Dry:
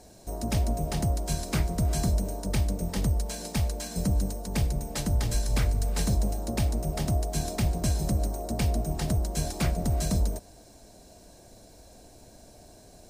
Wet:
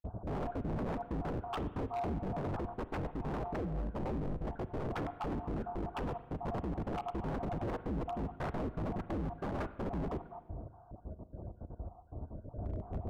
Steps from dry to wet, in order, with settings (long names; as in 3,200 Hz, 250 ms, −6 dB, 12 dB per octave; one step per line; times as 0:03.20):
time-frequency cells dropped at random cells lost 43%
Butterworth low-pass 1,400 Hz 96 dB per octave
parametric band 80 Hz +12 dB 2.4 octaves
0:03.42–0:04.77: downward compressor 3 to 1, threshold −33 dBFS, peak gain reduction 16 dB
0:07.43–0:07.86: reverse
brickwall limiter −25 dBFS, peak gain reduction 18 dB
speech leveller within 10 dB 0.5 s
wave folding −36 dBFS
spring reverb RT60 1.2 s, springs 38/48 ms, chirp 80 ms, DRR 13 dB
level +4.5 dB